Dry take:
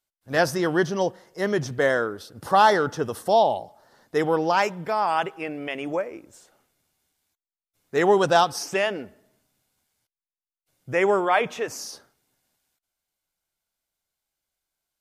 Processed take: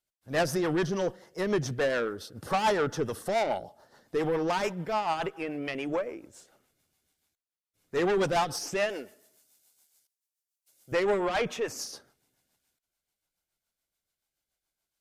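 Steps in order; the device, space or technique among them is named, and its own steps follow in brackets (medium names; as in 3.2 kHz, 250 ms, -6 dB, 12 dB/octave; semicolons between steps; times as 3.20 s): 8.89–10.92 s: tone controls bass -15 dB, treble +12 dB; overdriven rotary cabinet (valve stage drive 21 dB, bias 0.25; rotary cabinet horn 7 Hz); trim +1 dB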